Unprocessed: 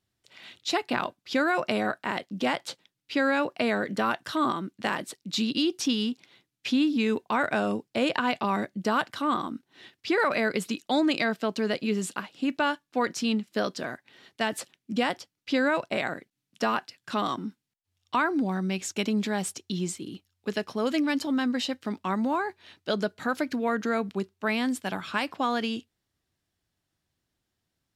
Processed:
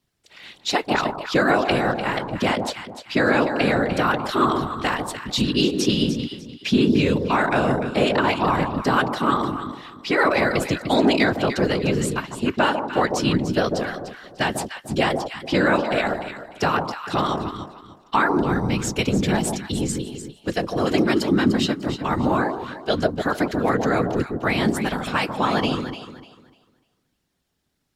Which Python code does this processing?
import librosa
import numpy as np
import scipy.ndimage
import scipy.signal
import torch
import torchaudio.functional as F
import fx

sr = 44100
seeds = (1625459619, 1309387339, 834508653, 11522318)

y = fx.whisperise(x, sr, seeds[0])
y = fx.echo_alternate(y, sr, ms=149, hz=980.0, feedback_pct=51, wet_db=-4.5)
y = y * 10.0 ** (5.5 / 20.0)